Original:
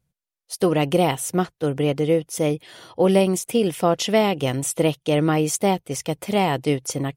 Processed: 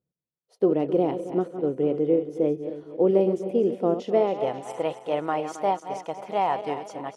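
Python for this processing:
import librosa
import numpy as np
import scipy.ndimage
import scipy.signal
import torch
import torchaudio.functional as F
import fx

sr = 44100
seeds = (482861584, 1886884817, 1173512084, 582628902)

y = fx.reverse_delay_fb(x, sr, ms=135, feedback_pct=64, wet_db=-10.0)
y = fx.filter_sweep_bandpass(y, sr, from_hz=370.0, to_hz=860.0, start_s=4.01, end_s=4.73, q=1.7)
y = fx.dynamic_eq(y, sr, hz=5100.0, q=0.71, threshold_db=-47.0, ratio=4.0, max_db=4)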